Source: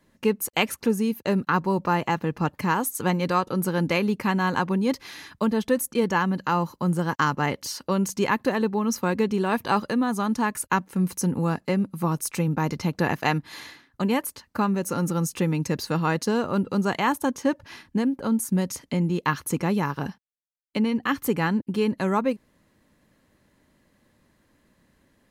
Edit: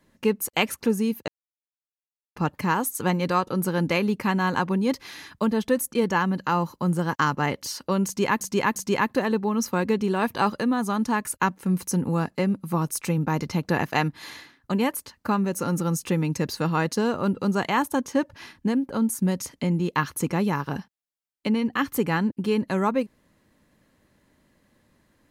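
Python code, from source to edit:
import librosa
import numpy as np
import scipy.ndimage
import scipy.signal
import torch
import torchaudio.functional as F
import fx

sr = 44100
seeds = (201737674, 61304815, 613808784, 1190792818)

y = fx.edit(x, sr, fx.silence(start_s=1.28, length_s=1.08),
    fx.repeat(start_s=8.06, length_s=0.35, count=3), tone=tone)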